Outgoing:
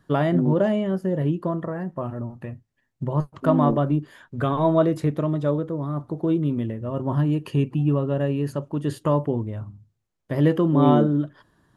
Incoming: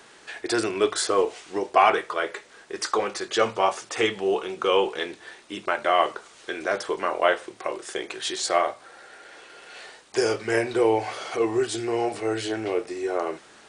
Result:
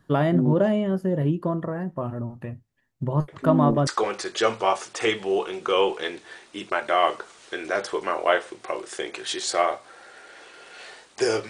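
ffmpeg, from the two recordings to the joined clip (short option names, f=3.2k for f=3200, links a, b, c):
-filter_complex "[1:a]asplit=2[a][b];[0:a]apad=whole_dur=11.49,atrim=end=11.49,atrim=end=3.872[c];[b]atrim=start=2.828:end=10.45[d];[a]atrim=start=2.24:end=2.83,asetpts=PTS-STARTPTS,volume=-16dB,afade=t=in:d=0.004:c=hsin,afade=t=out:st=0.586:d=0.004:c=hsin,adelay=3280[e];[c][d]acrossfade=d=0.004:c1=hsin:c2=hsin[f];[f][e]amix=inputs=2:normalize=0"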